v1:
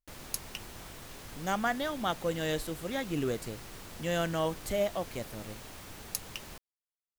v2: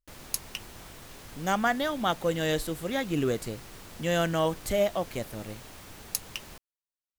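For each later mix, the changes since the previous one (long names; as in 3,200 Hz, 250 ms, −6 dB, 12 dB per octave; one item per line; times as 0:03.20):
speech +4.5 dB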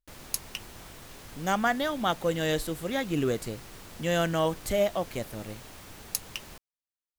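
nothing changed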